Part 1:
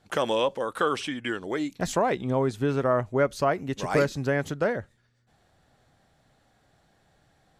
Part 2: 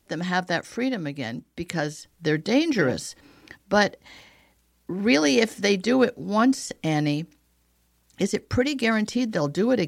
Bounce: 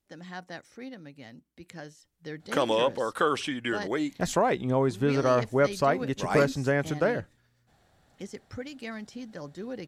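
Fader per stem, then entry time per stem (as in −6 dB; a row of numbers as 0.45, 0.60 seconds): 0.0, −16.0 decibels; 2.40, 0.00 seconds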